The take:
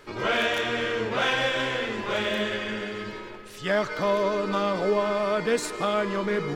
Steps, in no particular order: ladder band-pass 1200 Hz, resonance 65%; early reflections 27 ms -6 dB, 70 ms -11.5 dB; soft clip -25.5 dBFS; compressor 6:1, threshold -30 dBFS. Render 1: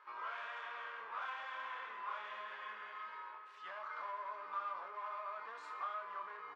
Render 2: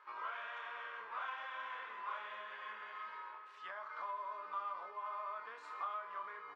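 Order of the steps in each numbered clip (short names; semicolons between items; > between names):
soft clip > early reflections > compressor > ladder band-pass; early reflections > compressor > ladder band-pass > soft clip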